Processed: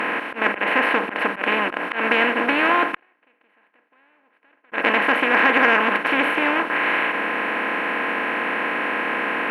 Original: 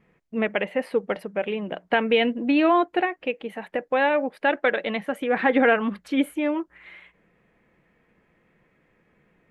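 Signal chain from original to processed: per-bin compression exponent 0.2; 2.94–4.72 flipped gate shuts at -14 dBFS, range -41 dB; auto swell 0.136 s; band shelf 1600 Hz +9 dB; added harmonics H 3 -29 dB, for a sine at 6.5 dBFS; gain -8 dB

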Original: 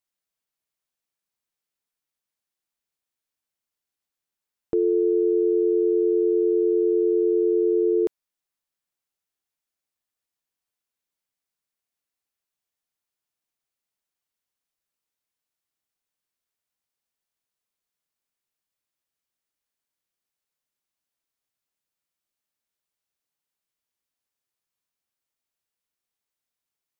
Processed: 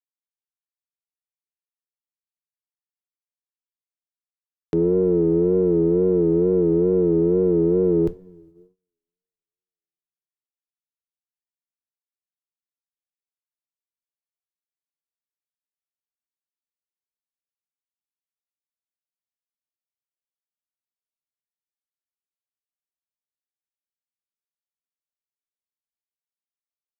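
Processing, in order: octaver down 1 oct, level +3 dB; two-slope reverb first 0.27 s, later 2.7 s, from -20 dB, DRR 12 dB; wow and flutter 91 cents; gate -50 dBFS, range -28 dB

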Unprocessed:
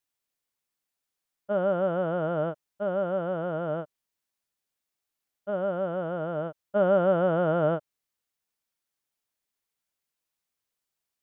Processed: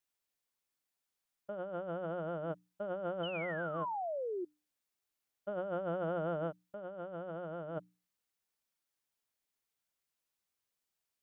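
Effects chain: painted sound fall, 3.23–4.45, 340–3100 Hz -35 dBFS; notches 60/120/180/240/300 Hz; negative-ratio compressor -32 dBFS, ratio -1; gain -7 dB

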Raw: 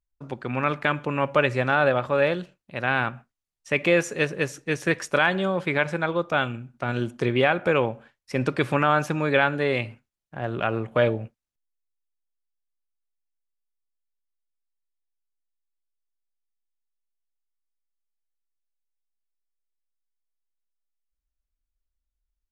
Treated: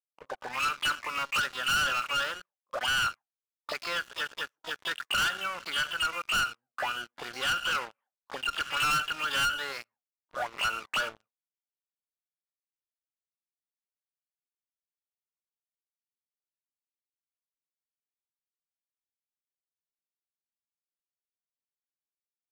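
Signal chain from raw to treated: auto-wah 430–1400 Hz, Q 13, up, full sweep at -22 dBFS; harmoniser +12 st -3 dB; sample leveller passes 5; gain -7.5 dB

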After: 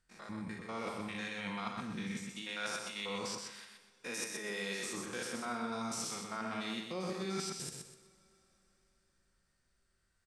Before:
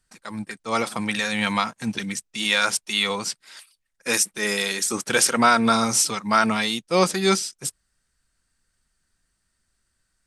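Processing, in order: stepped spectrum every 0.1 s; high shelf 6400 Hz -10.5 dB; reverse; compressor 6:1, threshold -35 dBFS, peak gain reduction 20 dB; reverse; feedback echo 0.125 s, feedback 29%, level -4.5 dB; two-slope reverb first 0.58 s, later 4.5 s, from -22 dB, DRR 8 dB; gain -4 dB

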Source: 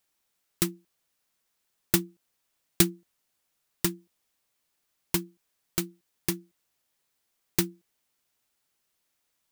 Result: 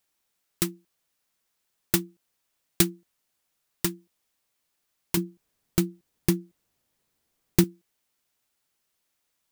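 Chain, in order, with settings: 5.17–7.64 low shelf 500 Hz +11 dB

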